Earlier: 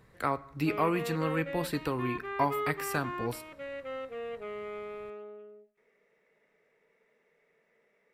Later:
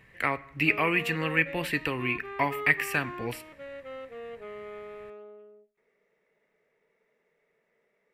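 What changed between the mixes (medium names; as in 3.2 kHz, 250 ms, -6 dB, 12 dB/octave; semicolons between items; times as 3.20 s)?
speech: add high-order bell 2.3 kHz +14.5 dB 1 oct; background: send -8.5 dB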